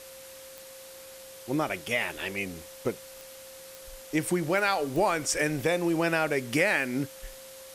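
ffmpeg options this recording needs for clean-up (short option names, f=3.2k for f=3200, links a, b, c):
-af "adeclick=t=4,bandreject=f=530:w=30,afftdn=nr=28:nf=-47"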